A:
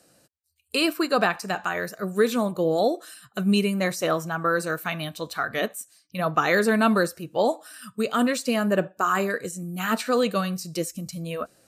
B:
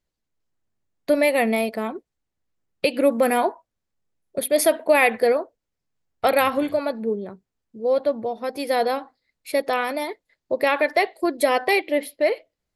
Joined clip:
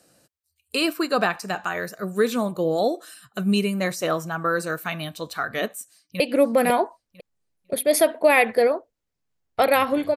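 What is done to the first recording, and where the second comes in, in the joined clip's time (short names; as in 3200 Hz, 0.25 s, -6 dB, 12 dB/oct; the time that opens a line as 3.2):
A
5.85–6.2 echo throw 0.5 s, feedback 15%, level -2.5 dB
6.2 switch to B from 2.85 s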